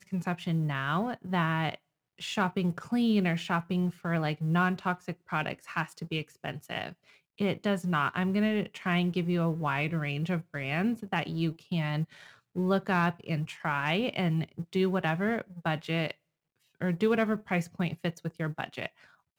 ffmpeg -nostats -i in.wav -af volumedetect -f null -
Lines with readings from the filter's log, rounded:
mean_volume: -30.6 dB
max_volume: -15.5 dB